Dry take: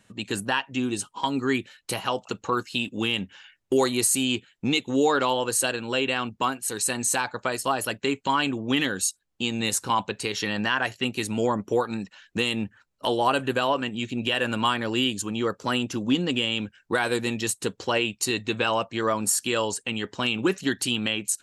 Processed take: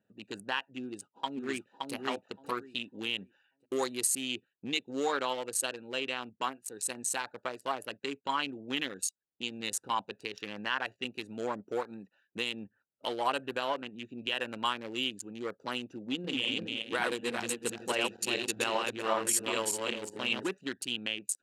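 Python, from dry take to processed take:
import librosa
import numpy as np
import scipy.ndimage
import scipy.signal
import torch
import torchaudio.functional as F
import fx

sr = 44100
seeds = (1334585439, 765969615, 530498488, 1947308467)

y = fx.echo_throw(x, sr, start_s=0.8, length_s=1.14, ms=570, feedback_pct=25, wet_db=-2.5)
y = fx.reverse_delay_fb(y, sr, ms=193, feedback_pct=58, wet_db=-1.5, at=(16.05, 20.49))
y = fx.wiener(y, sr, points=41)
y = fx.highpass(y, sr, hz=610.0, slope=6)
y = y * 10.0 ** (-4.5 / 20.0)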